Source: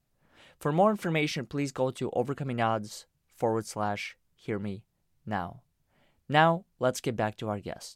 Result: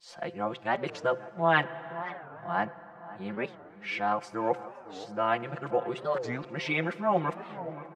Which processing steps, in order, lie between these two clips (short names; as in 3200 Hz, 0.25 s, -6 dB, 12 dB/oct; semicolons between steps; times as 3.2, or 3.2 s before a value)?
whole clip reversed; LPF 1800 Hz 12 dB/oct; de-hum 128.8 Hz, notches 4; tape echo 0.527 s, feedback 50%, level -15.5 dB, low-pass 1300 Hz; plate-style reverb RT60 4.8 s, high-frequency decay 0.45×, DRR 16.5 dB; in parallel at +2 dB: vocal rider within 4 dB 0.5 s; on the sum: tilt +3.5 dB/oct; comb 5.8 ms, depth 83%; record warp 45 rpm, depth 250 cents; gain -6.5 dB